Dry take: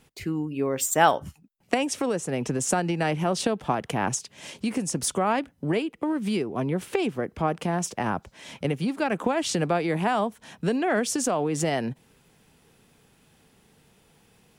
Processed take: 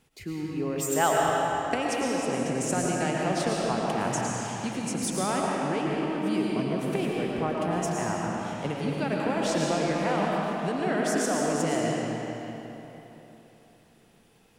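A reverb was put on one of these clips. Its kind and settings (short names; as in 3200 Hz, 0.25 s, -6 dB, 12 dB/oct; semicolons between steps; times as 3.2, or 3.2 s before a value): digital reverb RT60 3.5 s, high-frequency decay 0.8×, pre-delay 70 ms, DRR -3.5 dB; gain -6 dB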